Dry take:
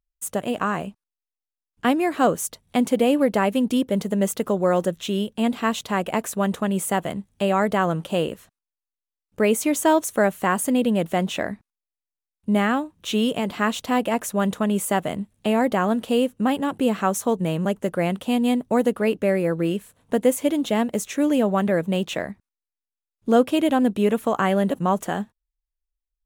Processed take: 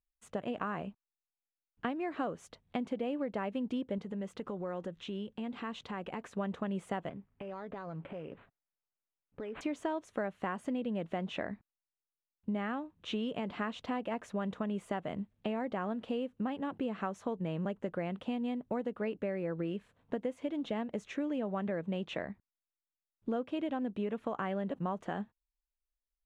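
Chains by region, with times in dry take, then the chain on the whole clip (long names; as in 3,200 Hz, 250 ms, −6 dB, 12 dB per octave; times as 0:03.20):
0:03.98–0:06.34: downward compressor 2.5 to 1, threshold −30 dBFS + notch filter 640 Hz, Q 7.8
0:07.09–0:09.61: downward compressor, threshold −31 dBFS + comb filter 7.3 ms, depth 31% + linearly interpolated sample-rate reduction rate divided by 8×
whole clip: low-pass filter 3,000 Hz 12 dB per octave; downward compressor, threshold −24 dBFS; level −8 dB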